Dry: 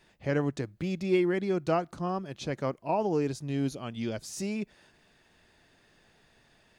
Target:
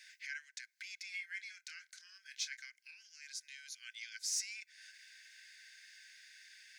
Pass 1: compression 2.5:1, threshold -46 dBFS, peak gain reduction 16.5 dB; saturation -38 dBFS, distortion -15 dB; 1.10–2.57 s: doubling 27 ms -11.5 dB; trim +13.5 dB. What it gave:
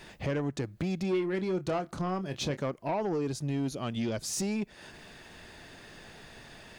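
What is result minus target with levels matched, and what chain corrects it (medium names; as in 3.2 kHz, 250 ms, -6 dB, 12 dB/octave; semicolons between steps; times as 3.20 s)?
2 kHz band -9.0 dB
compression 2.5:1, threshold -46 dBFS, peak gain reduction 16.5 dB; rippled Chebyshev high-pass 1.5 kHz, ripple 9 dB; saturation -38 dBFS, distortion -26 dB; 1.10–2.57 s: doubling 27 ms -11.5 dB; trim +13.5 dB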